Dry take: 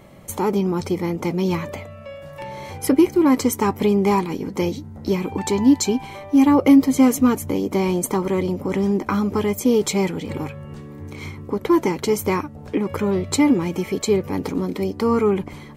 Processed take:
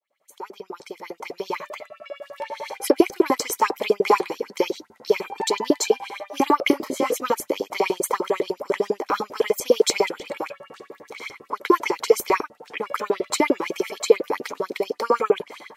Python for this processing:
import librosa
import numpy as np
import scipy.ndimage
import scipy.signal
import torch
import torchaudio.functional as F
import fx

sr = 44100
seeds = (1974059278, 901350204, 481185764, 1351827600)

y = fx.fade_in_head(x, sr, length_s=2.68)
y = fx.cheby_harmonics(y, sr, harmonics=(2,), levels_db=(-15,), full_scale_db=-4.0)
y = fx.filter_lfo_highpass(y, sr, shape='saw_up', hz=10.0, low_hz=350.0, high_hz=5600.0, q=4.4)
y = fx.detune_double(y, sr, cents=fx.line((6.71, 28.0), (7.15, 42.0)), at=(6.71, 7.15), fade=0.02)
y = F.gain(torch.from_numpy(y), -2.0).numpy()